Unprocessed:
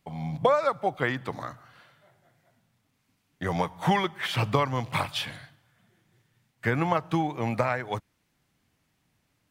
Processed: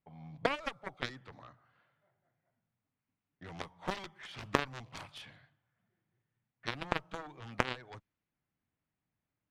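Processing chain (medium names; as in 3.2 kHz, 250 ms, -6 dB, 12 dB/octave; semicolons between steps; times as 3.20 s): level-controlled noise filter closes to 2.3 kHz, open at -20.5 dBFS; Chebyshev shaper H 2 -23 dB, 3 -8 dB, 5 -31 dB, 7 -36 dB, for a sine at -8.5 dBFS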